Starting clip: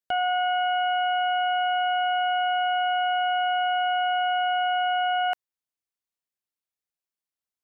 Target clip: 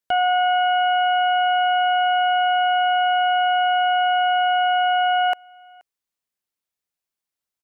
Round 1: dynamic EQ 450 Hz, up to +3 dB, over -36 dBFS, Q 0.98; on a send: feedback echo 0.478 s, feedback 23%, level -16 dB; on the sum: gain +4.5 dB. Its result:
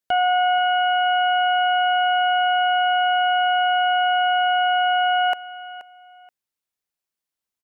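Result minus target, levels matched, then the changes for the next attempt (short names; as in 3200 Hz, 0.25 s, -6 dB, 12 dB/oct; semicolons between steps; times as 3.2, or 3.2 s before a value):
echo-to-direct +12 dB
change: feedback echo 0.478 s, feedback 23%, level -28 dB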